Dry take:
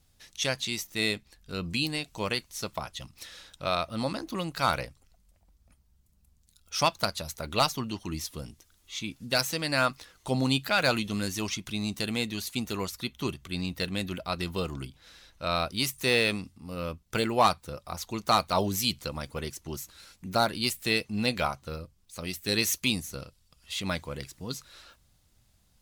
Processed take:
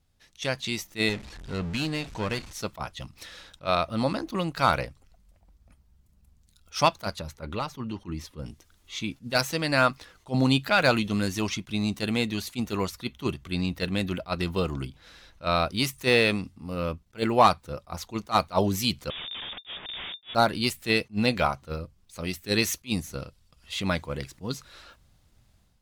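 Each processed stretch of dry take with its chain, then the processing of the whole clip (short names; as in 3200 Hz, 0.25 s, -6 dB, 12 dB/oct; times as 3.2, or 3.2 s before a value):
1.09–2.53 zero-crossing step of -38 dBFS + LPF 8100 Hz + tube stage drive 26 dB, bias 0.65
7.19–8.46 high shelf 3500 Hz -10.5 dB + notch 690 Hz, Q 5.8 + compressor 2:1, threshold -36 dBFS
19.1–20.35 HPF 43 Hz + Schmitt trigger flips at -47.5 dBFS + inverted band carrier 3600 Hz
whole clip: high shelf 4100 Hz -8.5 dB; AGC gain up to 8.5 dB; attack slew limiter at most 360 dB/s; gain -3.5 dB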